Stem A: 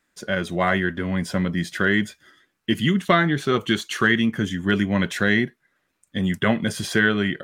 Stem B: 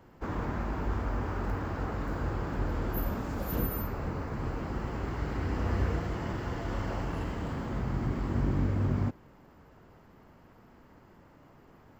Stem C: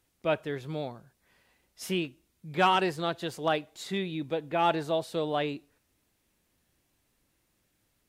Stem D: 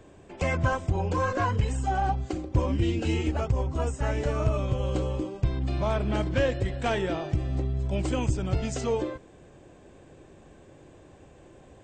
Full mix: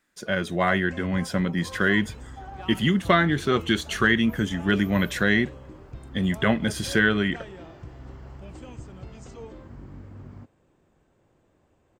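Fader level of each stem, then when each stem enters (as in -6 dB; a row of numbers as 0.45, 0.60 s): -1.5, -14.5, -19.5, -15.0 dB; 0.00, 1.35, 0.00, 0.50 s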